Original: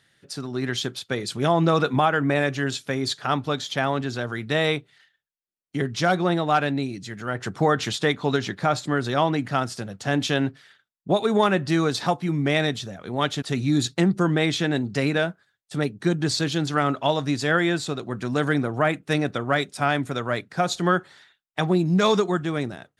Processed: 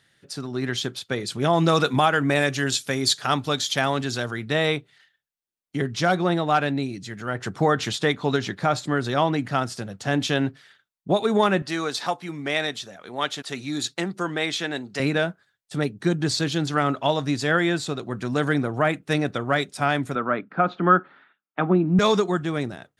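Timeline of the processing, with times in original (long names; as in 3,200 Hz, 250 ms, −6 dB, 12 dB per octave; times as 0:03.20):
0:01.53–0:04.31: high-shelf EQ 3,700 Hz +11.5 dB
0:11.62–0:15.00: high-pass filter 630 Hz 6 dB per octave
0:20.15–0:21.99: loudspeaker in its box 190–2,500 Hz, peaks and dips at 200 Hz +7 dB, 280 Hz +7 dB, 1,300 Hz +8 dB, 1,900 Hz −5 dB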